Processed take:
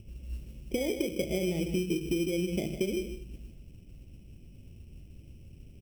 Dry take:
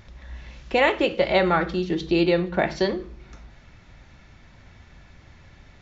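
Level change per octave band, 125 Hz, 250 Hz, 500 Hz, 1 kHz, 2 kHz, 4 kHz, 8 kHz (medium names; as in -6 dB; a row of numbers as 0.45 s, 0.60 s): -4.5 dB, -6.0 dB, -10.0 dB, -27.5 dB, -16.0 dB, -10.0 dB, no reading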